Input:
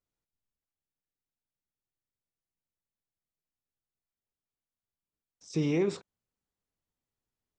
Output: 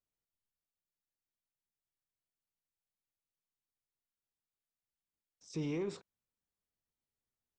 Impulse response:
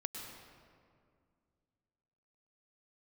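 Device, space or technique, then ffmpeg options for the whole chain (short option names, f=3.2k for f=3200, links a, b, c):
soft clipper into limiter: -af "asoftclip=type=tanh:threshold=-19.5dB,alimiter=limit=-24dB:level=0:latency=1:release=184,volume=-6dB"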